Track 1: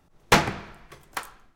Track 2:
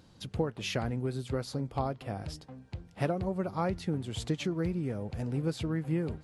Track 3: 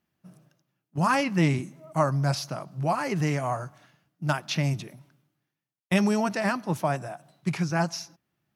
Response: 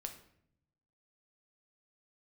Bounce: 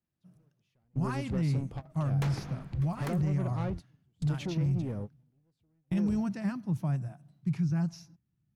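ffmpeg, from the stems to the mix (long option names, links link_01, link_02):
-filter_complex "[0:a]acompressor=threshold=-30dB:ratio=2,adelay=1900,volume=-10dB[link_01];[1:a]asoftclip=type=tanh:threshold=-31.5dB,volume=-4dB[link_02];[2:a]asubboost=boost=6.5:cutoff=190,volume=-16dB,asplit=2[link_03][link_04];[link_04]apad=whole_len=274832[link_05];[link_02][link_05]sidechaingate=range=-39dB:threshold=-56dB:ratio=16:detection=peak[link_06];[link_01][link_06][link_03]amix=inputs=3:normalize=0,lowshelf=frequency=400:gain=8.5,alimiter=limit=-22.5dB:level=0:latency=1:release=32"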